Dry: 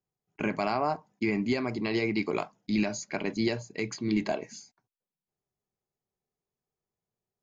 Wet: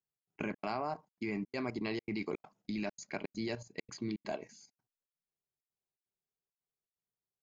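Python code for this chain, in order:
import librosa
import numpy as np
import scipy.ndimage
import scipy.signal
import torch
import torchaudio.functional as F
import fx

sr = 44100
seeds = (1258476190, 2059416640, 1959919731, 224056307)

y = fx.level_steps(x, sr, step_db=11)
y = fx.step_gate(y, sr, bpm=166, pattern='xx.xxx.xxx', floor_db=-60.0, edge_ms=4.5)
y = y * librosa.db_to_amplitude(-3.0)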